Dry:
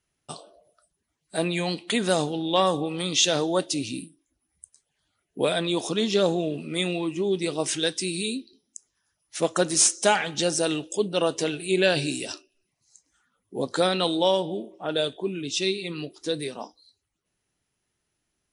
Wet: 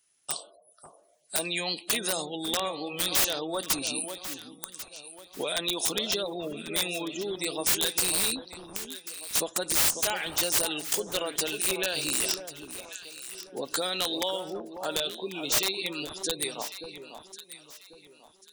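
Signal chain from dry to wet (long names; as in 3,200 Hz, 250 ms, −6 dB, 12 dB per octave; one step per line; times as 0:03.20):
gate on every frequency bin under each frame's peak −30 dB strong
tape wow and flutter 18 cents
downward compressor 8 to 1, threshold −26 dBFS, peak gain reduction 11 dB
RIAA equalisation recording
wrap-around overflow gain 17.5 dB
on a send: delay that swaps between a low-pass and a high-pass 546 ms, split 1,200 Hz, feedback 54%, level −8 dB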